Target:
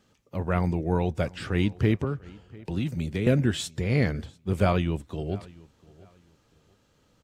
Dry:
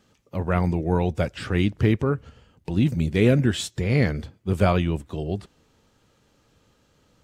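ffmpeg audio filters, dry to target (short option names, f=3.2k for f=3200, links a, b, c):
-filter_complex "[0:a]asettb=1/sr,asplit=3[a][b][c];[a]atrim=end=2.044[d];[b]atrim=start=2.04:end=3.27,asetpts=PTS-STARTPTS,afade=t=in:d=0.004:c=qsin,afade=t=out:st=1.226:d=0.004:c=qsin,acrossover=split=230|530[e][f][g];[e]acompressor=threshold=-25dB:ratio=4[h];[f]acompressor=threshold=-33dB:ratio=4[i];[g]acompressor=threshold=-34dB:ratio=4[j];[h][i][j]amix=inputs=3:normalize=0[k];[c]atrim=start=3.266[l];[d][k]acrossfade=d=0.004:c1=hsin:c2=qsin[m];[m][l]acrossfade=d=0.004:c1=qsin:c2=hsin,asplit=2[n][o];[o]adelay=695,lowpass=f=4.9k:p=1,volume=-22.5dB,asplit=2[p][q];[q]adelay=695,lowpass=f=4.9k:p=1,volume=0.25[r];[n][p][r]amix=inputs=3:normalize=0,volume=-3dB"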